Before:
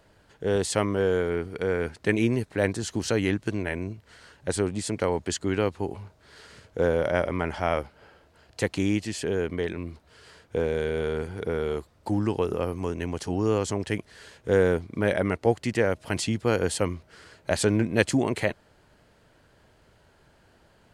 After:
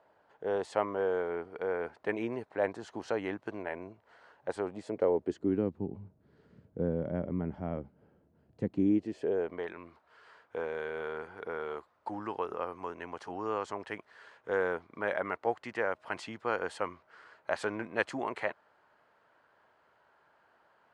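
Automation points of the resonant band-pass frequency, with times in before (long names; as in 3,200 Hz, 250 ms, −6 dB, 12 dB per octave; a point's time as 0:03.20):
resonant band-pass, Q 1.5
0:04.62 820 Hz
0:05.81 190 Hz
0:08.61 190 Hz
0:09.74 1,100 Hz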